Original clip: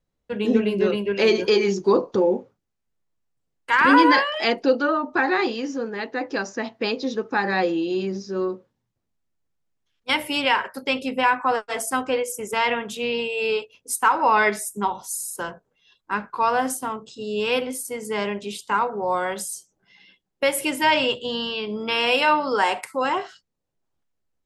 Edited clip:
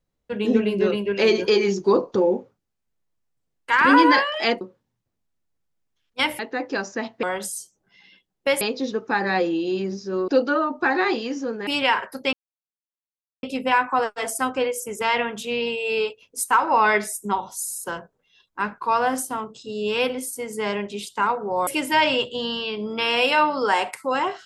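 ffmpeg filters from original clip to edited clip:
-filter_complex "[0:a]asplit=9[s0][s1][s2][s3][s4][s5][s6][s7][s8];[s0]atrim=end=4.612[s9];[s1]atrim=start=8.508:end=10.292[s10];[s2]atrim=start=5.998:end=6.842[s11];[s3]atrim=start=19.188:end=20.572[s12];[s4]atrim=start=6.838:end=8.512[s13];[s5]atrim=start=4.608:end=6.002[s14];[s6]atrim=start=10.288:end=10.95,asetpts=PTS-STARTPTS,afade=t=out:st=0.658:d=0.004:c=hsin,apad=pad_dur=1.1[s15];[s7]atrim=start=10.95:end=19.192,asetpts=PTS-STARTPTS,afade=t=in:d=0.004:c=hsin[s16];[s8]atrim=start=20.568[s17];[s9][s10]acrossfade=d=0.004:c1=hsin:c2=hsin[s18];[s18][s11]acrossfade=d=0.004:c1=hsin:c2=hsin[s19];[s19][s12]acrossfade=d=0.004:c1=hsin:c2=hsin[s20];[s20][s13]acrossfade=d=0.004:c1=hsin:c2=hsin[s21];[s21][s14]acrossfade=d=0.004:c1=hsin:c2=hsin[s22];[s15][s16]concat=n=2:v=0:a=1[s23];[s22][s23]acrossfade=d=0.004:c1=hsin:c2=hsin[s24];[s24][s17]acrossfade=d=0.004:c1=hsin:c2=hsin"

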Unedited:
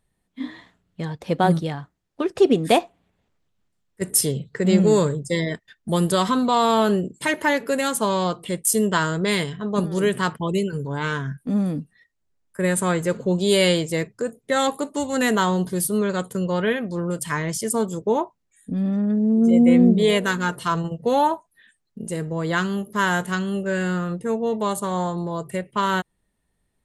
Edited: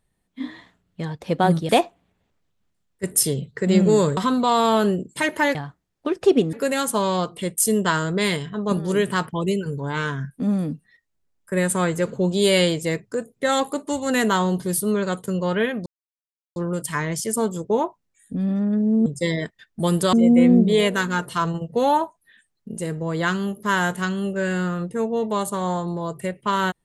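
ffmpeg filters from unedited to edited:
-filter_complex "[0:a]asplit=8[s0][s1][s2][s3][s4][s5][s6][s7];[s0]atrim=end=1.692[s8];[s1]atrim=start=2.668:end=5.152[s9];[s2]atrim=start=6.218:end=7.602[s10];[s3]atrim=start=1.688:end=2.672[s11];[s4]atrim=start=7.598:end=16.93,asetpts=PTS-STARTPTS,afade=t=out:st=9.328:d=0.004:c=hsin,apad=pad_dur=0.7[s12];[s5]atrim=start=16.93:end=19.432,asetpts=PTS-STARTPTS,afade=t=in:d=0.004:c=hsin[s13];[s6]atrim=start=5.148:end=6.222[s14];[s7]atrim=start=19.428[s15];[s8][s9]acrossfade=d=0.004:c1=hsin:c2=hsin[s16];[s16][s10]acrossfade=d=0.004:c1=hsin:c2=hsin[s17];[s17][s11]acrossfade=d=0.004:c1=hsin:c2=hsin[s18];[s12][s13]concat=n=2:v=0:a=1[s19];[s18][s19]acrossfade=d=0.004:c1=hsin:c2=hsin[s20];[s20][s14]acrossfade=d=0.004:c1=hsin:c2=hsin[s21];[s21][s15]acrossfade=d=0.004:c1=hsin:c2=hsin"

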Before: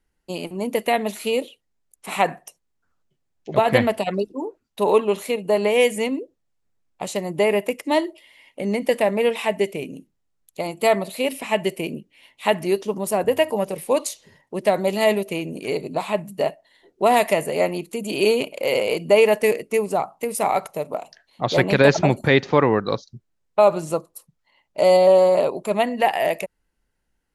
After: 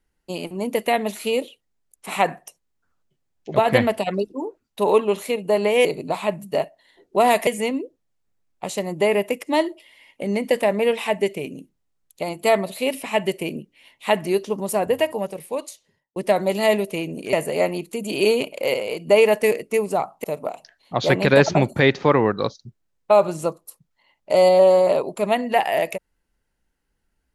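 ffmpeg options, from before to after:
-filter_complex "[0:a]asplit=8[s0][s1][s2][s3][s4][s5][s6][s7];[s0]atrim=end=5.852[s8];[s1]atrim=start=15.708:end=17.332[s9];[s2]atrim=start=5.848:end=14.54,asetpts=PTS-STARTPTS,afade=t=out:st=7.302:d=1.39[s10];[s3]atrim=start=14.54:end=15.712,asetpts=PTS-STARTPTS,afade=t=in:d=0.004:c=hsin[s11];[s4]atrim=start=17.328:end=18.742[s12];[s5]atrim=start=18.738:end=19.072,asetpts=PTS-STARTPTS,volume=0.562[s13];[s6]atrim=start=19.068:end=20.242[s14];[s7]atrim=start=20.718[s15];[s8][s9]acrossfade=d=0.004:c1=hsin:c2=hsin[s16];[s10][s11]concat=n=2:v=0:a=1[s17];[s16][s17]acrossfade=d=0.004:c1=hsin:c2=hsin[s18];[s18][s12]acrossfade=d=0.004:c1=hsin:c2=hsin[s19];[s19][s13]acrossfade=d=0.004:c1=hsin:c2=hsin[s20];[s20][s14]acrossfade=d=0.004:c1=hsin:c2=hsin[s21];[s21][s15]acrossfade=d=0.004:c1=hsin:c2=hsin"

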